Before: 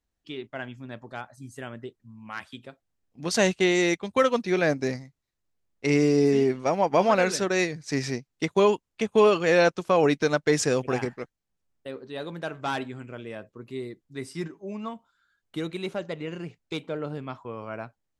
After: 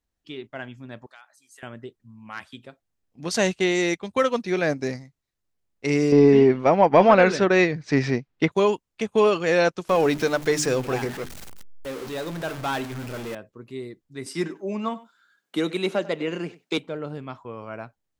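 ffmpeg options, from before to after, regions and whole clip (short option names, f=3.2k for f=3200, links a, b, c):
-filter_complex "[0:a]asettb=1/sr,asplit=3[a][b][c];[a]atrim=end=1.064[d];[b]atrim=start=1.06:end=1.63,asetpts=PTS-STARTPTS,afade=t=in:d=0.004:c=qsin,afade=t=out:st=0.566:d=0.004:c=qsin,highpass=1.3k,acompressor=threshold=-45dB:ratio=3:attack=3.2:release=140:knee=1:detection=peak[e];[c]atrim=start=1.626[f];[d][e]acrossfade=d=0.004:c1=hsin:c2=qsin[g];[g][f]acrossfade=d=0.004:c1=qsin:c2=hsin,asettb=1/sr,asplit=3[h][i][j];[h]atrim=end=6.124[k];[i]atrim=start=6.12:end=8.52,asetpts=PTS-STARTPTS,afade=t=in:d=0.004:c=qsin,afade=t=out:st=2.396:d=0.004:c=qsin,acontrast=81,lowpass=3.1k[l];[j]atrim=start=8.516[m];[k][l]acrossfade=d=0.004:c1=hsin:c2=qsin[n];[n][m]acrossfade=d=0.004:c1=qsin:c2=hsin,asettb=1/sr,asplit=3[o][p][q];[o]atrim=end=9.894[r];[p]atrim=start=9.89:end=13.35,asetpts=PTS-STARTPTS,afade=t=in:d=0.004:c=qsin,afade=t=out:st=3.456:d=0.004:c=qsin,aeval=exprs='val(0)+0.5*0.0282*sgn(val(0))':c=same,bandreject=f=50:t=h:w=6,bandreject=f=100:t=h:w=6,bandreject=f=150:t=h:w=6,bandreject=f=200:t=h:w=6,bandreject=f=250:t=h:w=6,bandreject=f=300:t=h:w=6,bandreject=f=350:t=h:w=6,bandreject=f=400:t=h:w=6[s];[q]atrim=start=13.346[t];[r][s]acrossfade=d=0.004:c1=hsin:c2=qsin[u];[u][t]acrossfade=d=0.004:c1=qsin:c2=hsin,asettb=1/sr,asplit=3[v][w][x];[v]atrim=end=14.264[y];[w]atrim=start=14.26:end=16.78,asetpts=PTS-STARTPTS,afade=t=in:d=0.004:c=qsin,afade=t=out:st=2.516:d=0.004:c=qsin,highpass=f=190:w=0.5412,highpass=f=190:w=1.3066,acontrast=89,aecho=1:1:97:0.112,atrim=end_sample=111132[z];[x]atrim=start=16.776[aa];[y][z]acrossfade=d=0.004:c1=hsin:c2=qsin[ab];[ab][aa]acrossfade=d=0.004:c1=qsin:c2=hsin"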